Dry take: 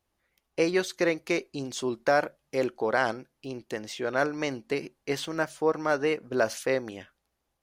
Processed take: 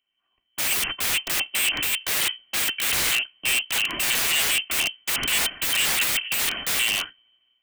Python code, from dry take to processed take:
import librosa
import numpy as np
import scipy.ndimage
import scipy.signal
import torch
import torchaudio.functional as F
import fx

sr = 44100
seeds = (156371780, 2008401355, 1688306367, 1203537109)

p1 = fx.lower_of_two(x, sr, delay_ms=2.5)
p2 = fx.peak_eq(p1, sr, hz=62.0, db=14.0, octaves=0.56)
p3 = fx.freq_invert(p2, sr, carrier_hz=3100)
p4 = fx.over_compress(p3, sr, threshold_db=-29.0, ratio=-1.0)
p5 = p3 + F.gain(torch.from_numpy(p4), -2.0).numpy()
p6 = (np.mod(10.0 ** (26.0 / 20.0) * p5 + 1.0, 2.0) - 1.0) / 10.0 ** (26.0 / 20.0)
p7 = fx.dynamic_eq(p6, sr, hz=2200.0, q=1.2, threshold_db=-47.0, ratio=4.0, max_db=6)
p8 = fx.band_widen(p7, sr, depth_pct=40)
y = F.gain(torch.from_numpy(p8), 6.5).numpy()